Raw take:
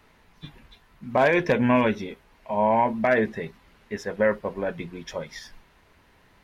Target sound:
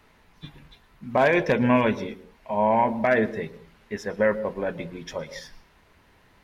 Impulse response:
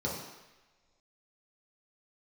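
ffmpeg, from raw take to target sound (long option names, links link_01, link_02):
-filter_complex "[0:a]asplit=2[link_01][link_02];[1:a]atrim=start_sample=2205,afade=type=out:start_time=0.17:duration=0.01,atrim=end_sample=7938,adelay=113[link_03];[link_02][link_03]afir=irnorm=-1:irlink=0,volume=-24dB[link_04];[link_01][link_04]amix=inputs=2:normalize=0"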